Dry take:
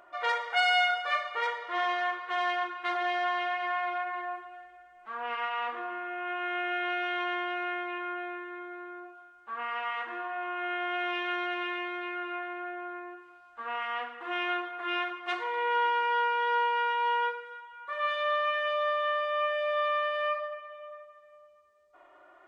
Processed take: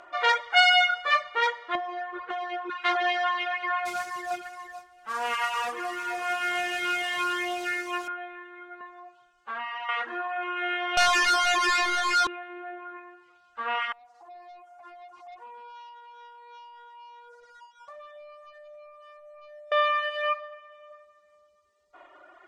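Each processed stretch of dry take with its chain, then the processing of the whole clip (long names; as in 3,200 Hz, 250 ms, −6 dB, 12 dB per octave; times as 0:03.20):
0:01.75–0:02.70: tilt shelving filter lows +7.5 dB, about 1,200 Hz + notch filter 1,100 Hz, Q 25 + downward compressor 12 to 1, threshold −31 dBFS
0:03.85–0:08.08: noise that follows the level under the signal 17 dB + single-tap delay 457 ms −7.5 dB
0:08.80–0:09.89: comb filter 7.4 ms, depth 64% + downward compressor 5 to 1, threshold −36 dBFS
0:10.97–0:12.27: three-way crossover with the lows and the highs turned down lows −15 dB, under 510 Hz, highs −13 dB, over 2,300 Hz + leveller curve on the samples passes 5
0:13.92–0:19.72: resonant band-pass 740 Hz, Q 6.5 + leveller curve on the samples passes 2 + downward compressor 8 to 1, threshold −48 dBFS
whole clip: low-pass filter 6,000 Hz 12 dB per octave; high-shelf EQ 4,100 Hz +10.5 dB; reverb reduction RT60 1.7 s; level +6 dB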